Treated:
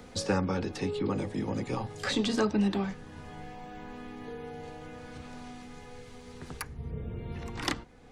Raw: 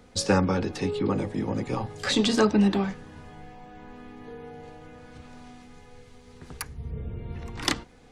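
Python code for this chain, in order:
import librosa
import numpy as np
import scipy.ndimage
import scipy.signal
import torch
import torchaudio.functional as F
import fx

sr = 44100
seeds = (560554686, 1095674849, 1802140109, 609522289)

y = fx.band_squash(x, sr, depth_pct=40)
y = y * librosa.db_to_amplitude(-4.0)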